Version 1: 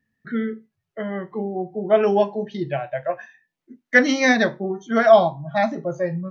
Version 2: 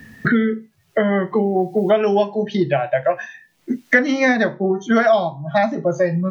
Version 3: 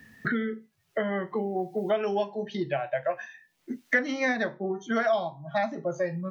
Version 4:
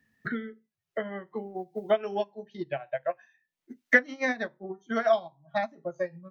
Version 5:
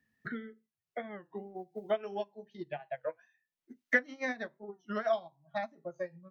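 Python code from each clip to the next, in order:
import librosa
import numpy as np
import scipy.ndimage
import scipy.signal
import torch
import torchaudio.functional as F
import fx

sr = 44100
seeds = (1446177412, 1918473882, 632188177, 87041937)

y1 = fx.band_squash(x, sr, depth_pct=100)
y1 = y1 * 10.0 ** (2.5 / 20.0)
y2 = fx.low_shelf(y1, sr, hz=390.0, db=-5.0)
y2 = y2 * 10.0 ** (-9.0 / 20.0)
y3 = fx.upward_expand(y2, sr, threshold_db=-35.0, expansion=2.5)
y3 = y3 * 10.0 ** (5.5 / 20.0)
y4 = fx.record_warp(y3, sr, rpm=33.33, depth_cents=160.0)
y4 = y4 * 10.0 ** (-7.0 / 20.0)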